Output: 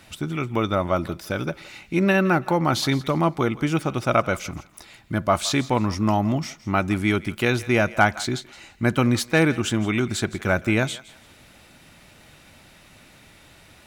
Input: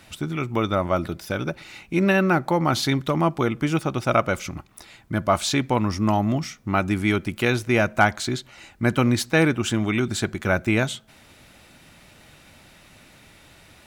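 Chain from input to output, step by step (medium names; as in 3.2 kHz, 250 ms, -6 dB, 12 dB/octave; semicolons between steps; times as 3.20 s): thinning echo 166 ms, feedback 28%, high-pass 720 Hz, level -17 dB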